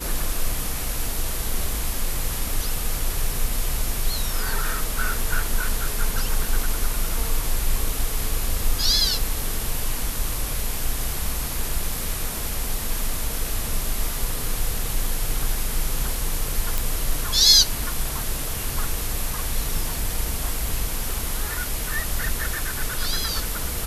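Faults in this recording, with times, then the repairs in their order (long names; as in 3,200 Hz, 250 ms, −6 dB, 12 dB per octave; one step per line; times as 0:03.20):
0:16.78: click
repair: click removal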